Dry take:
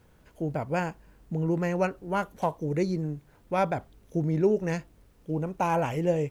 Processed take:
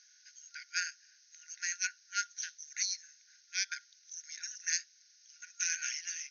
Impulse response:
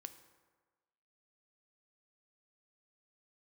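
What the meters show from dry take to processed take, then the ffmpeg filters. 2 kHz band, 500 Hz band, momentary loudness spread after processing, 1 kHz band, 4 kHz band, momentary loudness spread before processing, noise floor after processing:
-0.5 dB, under -40 dB, 17 LU, -18.0 dB, +10.5 dB, 10 LU, -65 dBFS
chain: -af "aeval=exprs='0.224*(cos(1*acos(clip(val(0)/0.224,-1,1)))-cos(1*PI/2))+0.0126*(cos(4*acos(clip(val(0)/0.224,-1,1)))-cos(4*PI/2))':c=same,aexciter=amount=8:drive=7.7:freq=4600,afftfilt=real='re*between(b*sr/4096,1400,6600)':imag='im*between(b*sr/4096,1400,6600)':win_size=4096:overlap=0.75"

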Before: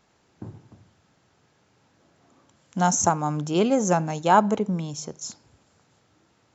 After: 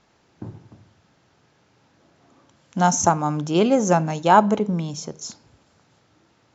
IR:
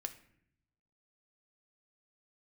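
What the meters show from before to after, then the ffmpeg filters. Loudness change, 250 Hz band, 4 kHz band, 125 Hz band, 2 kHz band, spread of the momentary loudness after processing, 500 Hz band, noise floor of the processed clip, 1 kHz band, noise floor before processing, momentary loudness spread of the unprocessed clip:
+3.0 dB, +3.0 dB, +3.0 dB, +3.0 dB, +3.0 dB, 18 LU, +3.5 dB, -62 dBFS, +3.5 dB, -65 dBFS, 16 LU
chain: -filter_complex "[0:a]lowpass=f=6700:w=0.5412,lowpass=f=6700:w=1.3066,asplit=2[s0][s1];[1:a]atrim=start_sample=2205,asetrate=66150,aresample=44100[s2];[s1][s2]afir=irnorm=-1:irlink=0,volume=0.891[s3];[s0][s3]amix=inputs=2:normalize=0"

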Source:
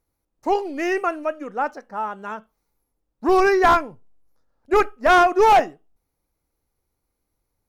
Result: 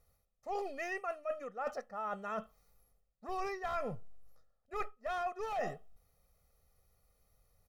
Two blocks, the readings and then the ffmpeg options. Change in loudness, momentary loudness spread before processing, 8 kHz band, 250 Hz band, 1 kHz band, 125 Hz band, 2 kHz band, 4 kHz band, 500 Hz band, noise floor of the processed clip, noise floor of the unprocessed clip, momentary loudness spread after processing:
-20.5 dB, 17 LU, -18.5 dB, -23.0 dB, -20.5 dB, -10.0 dB, -20.0 dB, -21.5 dB, -19.5 dB, -78 dBFS, -78 dBFS, 9 LU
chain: -af "aecho=1:1:1.6:0.87,areverse,acompressor=threshold=0.0141:ratio=10,areverse,volume=1.12"

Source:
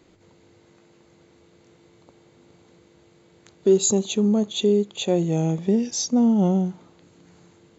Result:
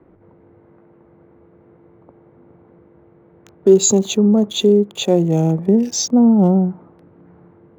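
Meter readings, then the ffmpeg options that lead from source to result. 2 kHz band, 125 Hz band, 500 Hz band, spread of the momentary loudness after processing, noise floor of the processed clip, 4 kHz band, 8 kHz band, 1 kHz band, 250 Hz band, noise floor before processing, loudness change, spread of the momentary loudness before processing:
+4.5 dB, +6.5 dB, +6.5 dB, 5 LU, -51 dBFS, +5.5 dB, no reading, +6.0 dB, +6.5 dB, -57 dBFS, +6.5 dB, 5 LU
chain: -filter_complex "[0:a]acrossover=split=170|510|1600[s0][s1][s2][s3];[s3]aeval=exprs='sgn(val(0))*max(abs(val(0))-0.00501,0)':c=same[s4];[s0][s1][s2][s4]amix=inputs=4:normalize=0,volume=2.11"

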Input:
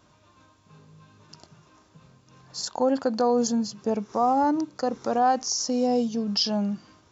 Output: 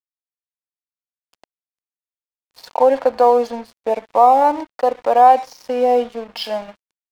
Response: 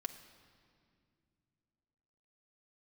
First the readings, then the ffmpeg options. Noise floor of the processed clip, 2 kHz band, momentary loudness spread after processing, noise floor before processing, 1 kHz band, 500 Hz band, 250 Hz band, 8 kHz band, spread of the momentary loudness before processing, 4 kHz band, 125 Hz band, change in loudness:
under -85 dBFS, +7.5 dB, 15 LU, -60 dBFS, +11.5 dB, +10.0 dB, -4.5 dB, no reading, 8 LU, -3.0 dB, under -10 dB, +8.5 dB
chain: -filter_complex "[0:a]highpass=f=370:w=0.5412,highpass=f=370:w=1.3066,equalizer=f=400:t=q:w=4:g=-9,equalizer=f=580:t=q:w=4:g=6,equalizer=f=910:t=q:w=4:g=4,equalizer=f=1400:t=q:w=4:g=-7,equalizer=f=2200:t=q:w=4:g=7,lowpass=f=3200:w=0.5412,lowpass=f=3200:w=1.3066,asplit=2[s0][s1];[1:a]atrim=start_sample=2205,atrim=end_sample=6174,highshelf=f=2700:g=5[s2];[s1][s2]afir=irnorm=-1:irlink=0,volume=1.33[s3];[s0][s3]amix=inputs=2:normalize=0,aeval=exprs='sgn(val(0))*max(abs(val(0))-0.0106,0)':c=same,volume=1.41"

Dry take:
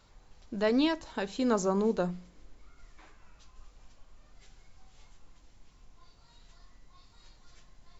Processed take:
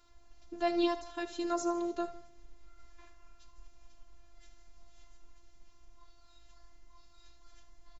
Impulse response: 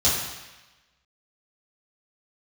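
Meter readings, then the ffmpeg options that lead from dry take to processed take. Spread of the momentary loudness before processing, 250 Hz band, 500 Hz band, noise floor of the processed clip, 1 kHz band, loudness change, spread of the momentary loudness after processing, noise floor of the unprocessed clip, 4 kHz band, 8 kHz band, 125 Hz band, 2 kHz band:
11 LU, -5.0 dB, -5.0 dB, -58 dBFS, -0.5 dB, -4.5 dB, 10 LU, -61 dBFS, -4.5 dB, no reading, under -15 dB, -5.5 dB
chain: -af "afftfilt=real='hypot(re,im)*cos(PI*b)':imag='0':win_size=512:overlap=0.75,aecho=1:1:77|154|231|308:0.211|0.0951|0.0428|0.0193"

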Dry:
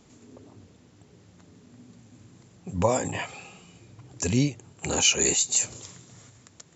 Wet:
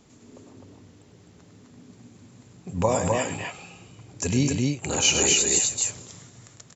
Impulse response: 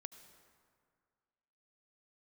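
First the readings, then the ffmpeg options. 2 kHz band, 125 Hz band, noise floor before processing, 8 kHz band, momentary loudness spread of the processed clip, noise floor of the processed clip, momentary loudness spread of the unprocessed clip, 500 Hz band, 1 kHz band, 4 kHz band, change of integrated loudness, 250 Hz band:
+2.5 dB, +2.5 dB, -56 dBFS, no reading, 16 LU, -53 dBFS, 17 LU, +2.5 dB, +2.5 dB, +2.5 dB, +2.0 dB, +2.5 dB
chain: -af "aecho=1:1:102|256.6:0.398|0.794"

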